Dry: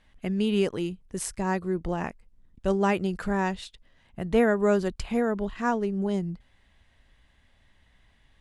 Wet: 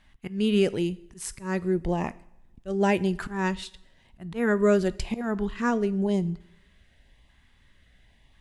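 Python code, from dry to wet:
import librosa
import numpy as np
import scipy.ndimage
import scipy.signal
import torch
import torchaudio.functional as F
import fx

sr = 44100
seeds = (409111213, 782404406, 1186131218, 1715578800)

y = fx.filter_lfo_notch(x, sr, shape='saw_up', hz=0.96, low_hz=460.0, high_hz=1600.0, q=2.0)
y = fx.auto_swell(y, sr, attack_ms=184.0)
y = fx.rev_double_slope(y, sr, seeds[0], early_s=0.61, late_s=1.6, knee_db=-18, drr_db=16.0)
y = y * librosa.db_to_amplitude(2.5)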